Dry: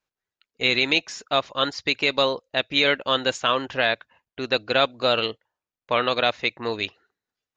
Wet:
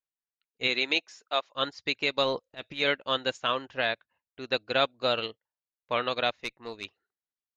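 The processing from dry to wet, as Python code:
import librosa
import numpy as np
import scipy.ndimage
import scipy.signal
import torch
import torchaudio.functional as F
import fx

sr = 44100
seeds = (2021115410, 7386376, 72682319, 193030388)

y = fx.highpass(x, sr, hz=fx.line((0.67, 190.0), (1.54, 550.0)), slope=12, at=(0.67, 1.54), fade=0.02)
y = fx.transient(y, sr, attack_db=-12, sustain_db=8, at=(2.23, 2.82))
y = fx.tube_stage(y, sr, drive_db=13.0, bias=0.55, at=(6.3, 6.85))
y = fx.upward_expand(y, sr, threshold_db=-42.0, expansion=1.5)
y = F.gain(torch.from_numpy(y), -4.5).numpy()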